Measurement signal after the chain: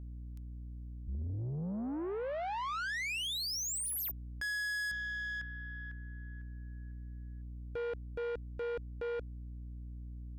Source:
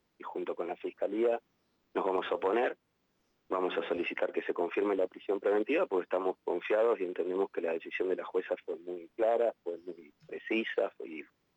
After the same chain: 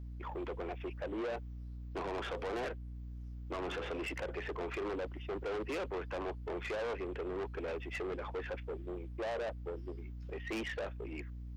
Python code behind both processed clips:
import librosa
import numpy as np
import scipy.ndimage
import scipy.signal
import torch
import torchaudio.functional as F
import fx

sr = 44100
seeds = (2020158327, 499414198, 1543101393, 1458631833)

y = fx.dmg_buzz(x, sr, base_hz=60.0, harmonics=5, level_db=-44.0, tilt_db=-9, odd_only=False)
y = 10.0 ** (-35.0 / 20.0) * np.tanh(y / 10.0 ** (-35.0 / 20.0))